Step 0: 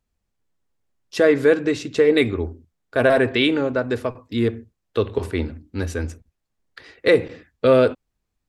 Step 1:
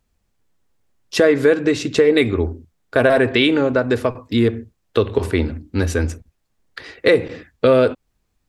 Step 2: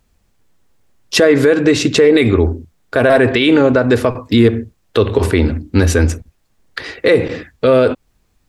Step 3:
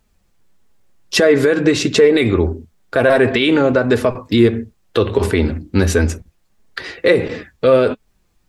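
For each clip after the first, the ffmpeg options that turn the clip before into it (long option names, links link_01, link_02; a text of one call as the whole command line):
ffmpeg -i in.wav -af "acompressor=threshold=-23dB:ratio=2,volume=8dB" out.wav
ffmpeg -i in.wav -af "alimiter=level_in=10dB:limit=-1dB:release=50:level=0:latency=1,volume=-1dB" out.wav
ffmpeg -i in.wav -af "flanger=delay=4.5:depth=1.5:regen=61:speed=1.5:shape=triangular,volume=2.5dB" out.wav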